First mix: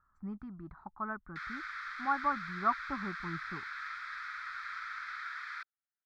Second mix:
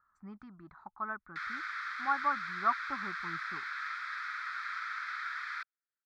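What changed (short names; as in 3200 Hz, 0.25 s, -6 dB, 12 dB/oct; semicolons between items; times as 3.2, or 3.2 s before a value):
speech: add tilt +3 dB/oct; background +3.0 dB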